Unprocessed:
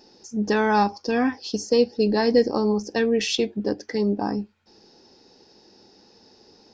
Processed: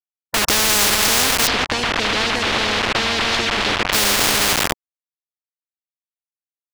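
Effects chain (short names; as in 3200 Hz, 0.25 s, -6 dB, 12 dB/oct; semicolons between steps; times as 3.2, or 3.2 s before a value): bell 400 Hz +7.5 dB 1.1 oct; outdoor echo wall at 16 m, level -18 dB; non-linear reverb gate 0.44 s rising, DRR 5.5 dB; treble ducked by the level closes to 1600 Hz, closed at -15 dBFS; sample gate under -24 dBFS; 1.47–3.93 LPF 3300 Hz 12 dB/oct; spectral compressor 10:1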